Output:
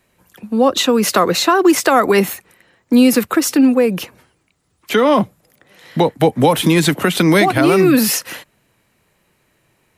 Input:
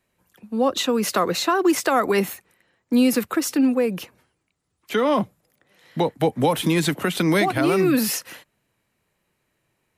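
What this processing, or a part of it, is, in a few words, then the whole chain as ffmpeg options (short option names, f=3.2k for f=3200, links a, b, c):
parallel compression: -filter_complex "[0:a]asplit=2[a][b];[b]acompressor=threshold=-33dB:ratio=6,volume=-2dB[c];[a][c]amix=inputs=2:normalize=0,volume=6dB"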